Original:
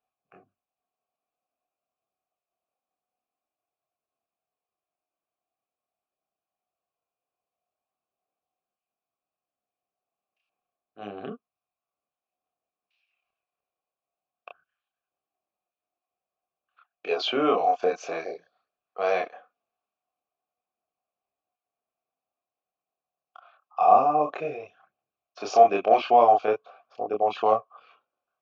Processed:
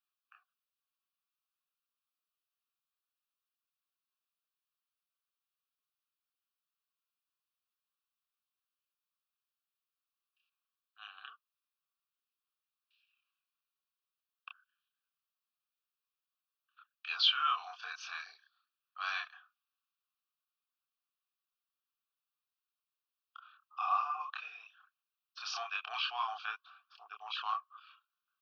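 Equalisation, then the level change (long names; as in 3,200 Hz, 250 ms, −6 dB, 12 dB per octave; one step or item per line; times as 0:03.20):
high-pass filter 1,400 Hz 24 dB per octave
phaser with its sweep stopped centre 2,100 Hz, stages 6
+3.0 dB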